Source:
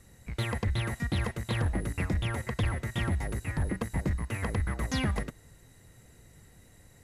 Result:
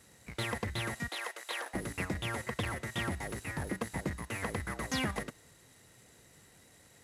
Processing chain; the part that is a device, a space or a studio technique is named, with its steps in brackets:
early wireless headset (high-pass filter 280 Hz 6 dB per octave; variable-slope delta modulation 64 kbit/s)
0:01.08–0:01.74: Bessel high-pass filter 640 Hz, order 6

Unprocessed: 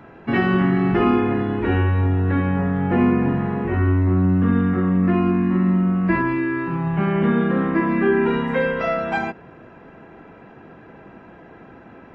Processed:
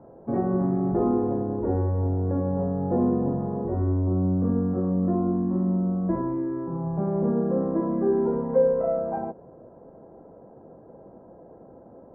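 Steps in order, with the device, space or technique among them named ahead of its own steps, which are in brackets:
under water (low-pass filter 920 Hz 24 dB per octave; parametric band 540 Hz +10 dB 0.5 octaves)
level −6.5 dB

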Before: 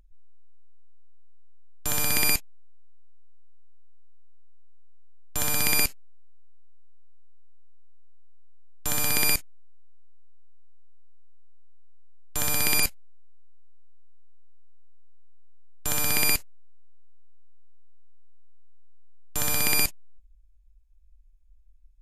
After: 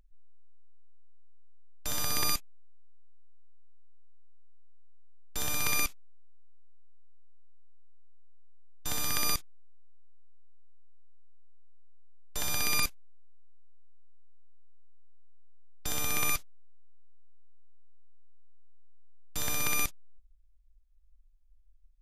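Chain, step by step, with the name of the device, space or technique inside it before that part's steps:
octave pedal (pitch-shifted copies added −12 semitones −3 dB)
level −8.5 dB

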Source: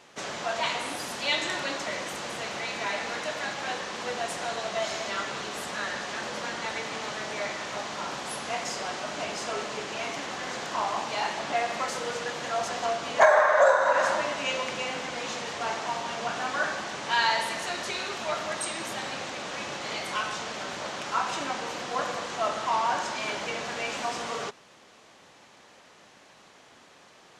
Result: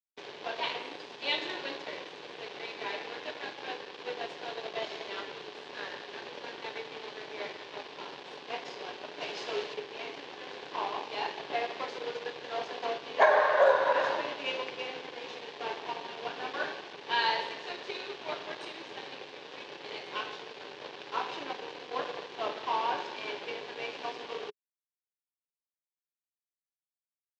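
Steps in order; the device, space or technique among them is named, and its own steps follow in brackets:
0:09.21–0:09.74: high-shelf EQ 2,600 Hz +7 dB
blown loudspeaker (dead-zone distortion −36 dBFS; loudspeaker in its box 190–4,200 Hz, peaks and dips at 210 Hz −10 dB, 420 Hz +8 dB, 650 Hz −5 dB, 1,300 Hz −9 dB, 2,000 Hz −4 dB)

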